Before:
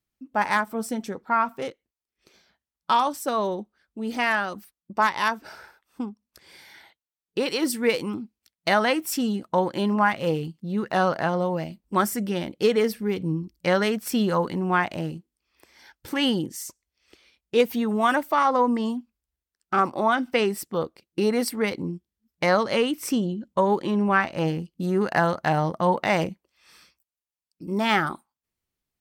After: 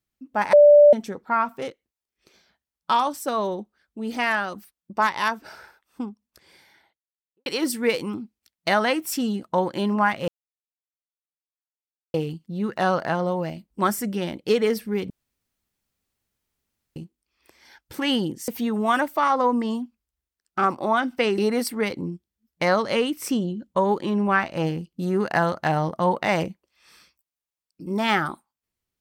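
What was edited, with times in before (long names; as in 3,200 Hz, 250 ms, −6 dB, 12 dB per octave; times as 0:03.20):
0:00.53–0:00.93: beep over 587 Hz −8 dBFS
0:06.09–0:07.46: fade out and dull
0:10.28: splice in silence 1.86 s
0:13.24–0:15.10: fill with room tone
0:16.62–0:17.63: remove
0:20.53–0:21.19: remove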